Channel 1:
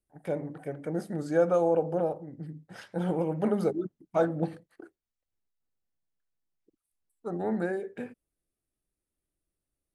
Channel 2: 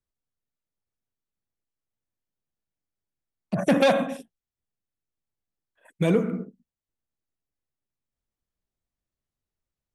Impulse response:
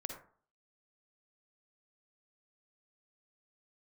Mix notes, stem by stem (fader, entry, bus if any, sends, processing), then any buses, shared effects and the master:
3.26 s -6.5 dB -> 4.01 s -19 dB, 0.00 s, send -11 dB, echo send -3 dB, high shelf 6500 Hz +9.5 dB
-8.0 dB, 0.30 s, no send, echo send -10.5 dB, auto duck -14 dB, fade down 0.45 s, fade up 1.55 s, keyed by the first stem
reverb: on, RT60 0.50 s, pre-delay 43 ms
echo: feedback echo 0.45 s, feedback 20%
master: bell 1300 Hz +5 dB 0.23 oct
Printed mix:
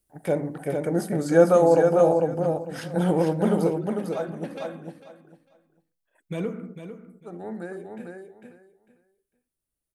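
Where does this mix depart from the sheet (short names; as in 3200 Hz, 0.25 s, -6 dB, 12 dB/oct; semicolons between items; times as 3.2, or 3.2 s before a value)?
stem 1 -6.5 dB -> +5.5 dB; master: missing bell 1300 Hz +5 dB 0.23 oct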